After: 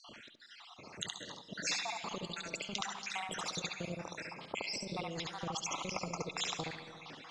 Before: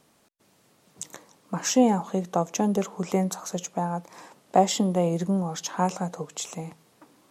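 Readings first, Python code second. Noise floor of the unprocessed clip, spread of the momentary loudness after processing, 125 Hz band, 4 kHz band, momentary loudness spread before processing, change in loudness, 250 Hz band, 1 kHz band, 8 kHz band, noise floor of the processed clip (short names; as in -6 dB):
-63 dBFS, 14 LU, -16.5 dB, -1.5 dB, 16 LU, -13.0 dB, -20.5 dB, -14.5 dB, -10.0 dB, -56 dBFS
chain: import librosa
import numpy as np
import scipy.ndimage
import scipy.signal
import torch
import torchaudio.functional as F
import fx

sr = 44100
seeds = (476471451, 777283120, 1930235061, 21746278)

p1 = fx.spec_dropout(x, sr, seeds[0], share_pct=71)
p2 = scipy.signal.sosfilt(scipy.signal.butter(4, 3900.0, 'lowpass', fs=sr, output='sos'), p1)
p3 = fx.high_shelf(p2, sr, hz=2000.0, db=11.5)
p4 = fx.over_compress(p3, sr, threshold_db=-31.0, ratio=-1.0)
p5 = p4 + fx.echo_single(p4, sr, ms=70, db=-5.0, dry=0)
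p6 = fx.rev_freeverb(p5, sr, rt60_s=1.6, hf_ratio=0.6, predelay_ms=65, drr_db=20.0)
y = fx.spectral_comp(p6, sr, ratio=2.0)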